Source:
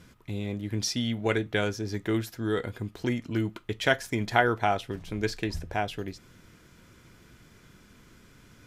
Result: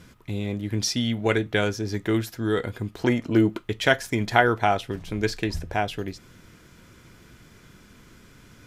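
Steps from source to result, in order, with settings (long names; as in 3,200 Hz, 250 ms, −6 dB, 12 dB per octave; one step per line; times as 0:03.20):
0:02.98–0:03.60: parametric band 990 Hz → 320 Hz +8.5 dB 2 octaves
level +4 dB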